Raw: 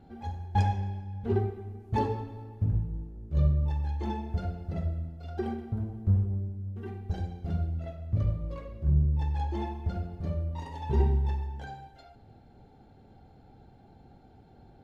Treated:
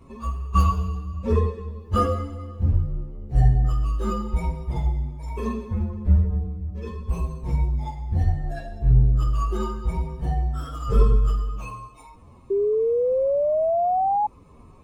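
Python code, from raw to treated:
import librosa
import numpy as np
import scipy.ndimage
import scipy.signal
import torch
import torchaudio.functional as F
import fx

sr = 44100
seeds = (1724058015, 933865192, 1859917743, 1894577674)

y = fx.partial_stretch(x, sr, pct=127)
y = fx.spec_paint(y, sr, seeds[0], shape='rise', start_s=12.5, length_s=1.77, low_hz=390.0, high_hz=850.0, level_db=-30.0)
y = y * 10.0 ** (9.0 / 20.0)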